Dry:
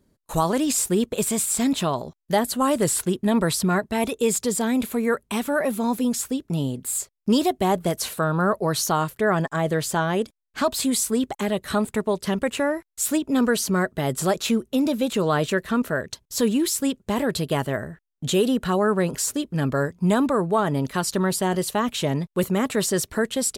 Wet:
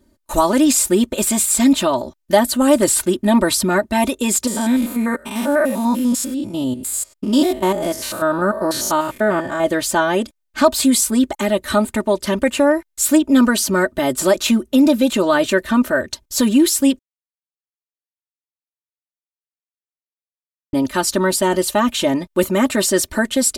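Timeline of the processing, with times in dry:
4.47–9.64 stepped spectrum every 0.1 s
16.99–20.73 mute
whole clip: comb 3.3 ms, depth 86%; gain +4.5 dB

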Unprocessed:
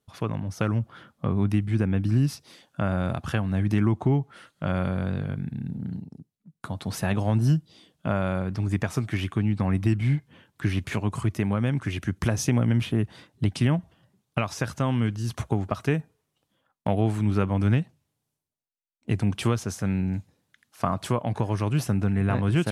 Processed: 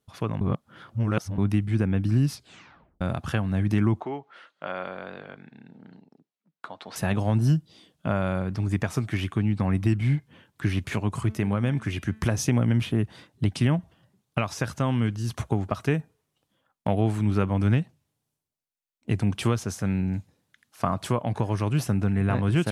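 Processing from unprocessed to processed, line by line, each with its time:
0.41–1.38 reverse
2.33 tape stop 0.68 s
4–6.96 BPF 490–3900 Hz
11.2–12.31 de-hum 218.7 Hz, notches 22

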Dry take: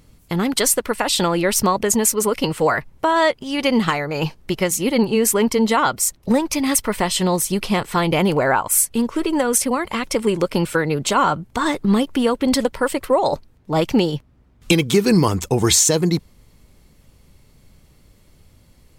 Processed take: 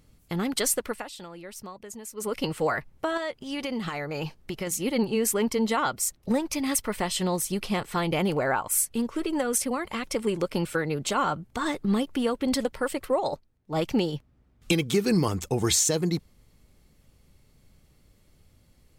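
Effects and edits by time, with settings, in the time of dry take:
0.86–2.36 dip -15.5 dB, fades 0.24 s
3.17–4.67 compressor, threshold -19 dBFS
13.2–13.81 upward expander, over -33 dBFS
whole clip: notch 980 Hz, Q 14; gain -8 dB

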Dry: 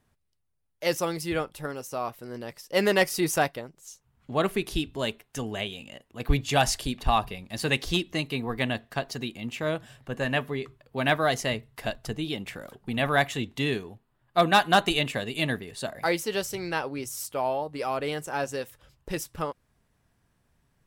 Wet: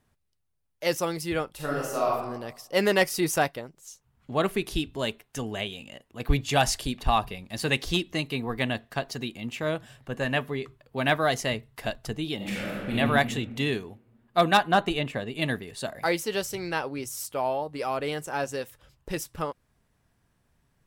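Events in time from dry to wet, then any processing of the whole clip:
1.55–2.12 reverb throw, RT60 0.94 s, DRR -4.5 dB
12.36–12.97 reverb throw, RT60 1.9 s, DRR -7 dB
14.57–15.42 high shelf 2700 Hz -11 dB

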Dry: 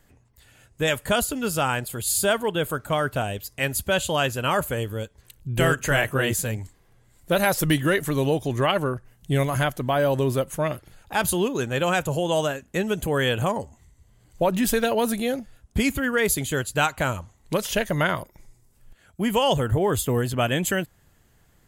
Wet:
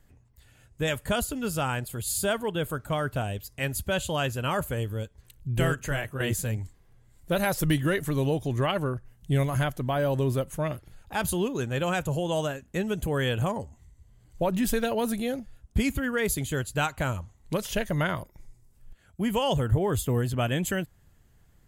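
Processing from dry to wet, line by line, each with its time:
5.52–6.2 fade out, to -8 dB
whole clip: low shelf 170 Hz +8.5 dB; gain -6 dB

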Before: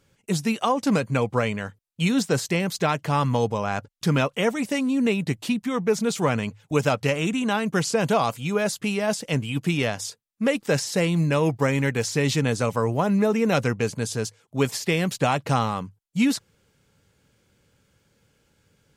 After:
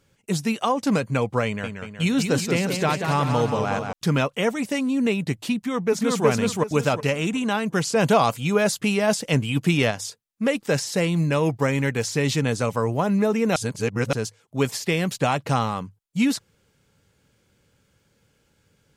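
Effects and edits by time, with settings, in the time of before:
1.45–3.93 warbling echo 0.184 s, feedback 59%, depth 122 cents, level -6 dB
5.55–6.26 echo throw 0.37 s, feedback 25%, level 0 dB
7.96–9.91 gain +3.5 dB
13.56–14.13 reverse

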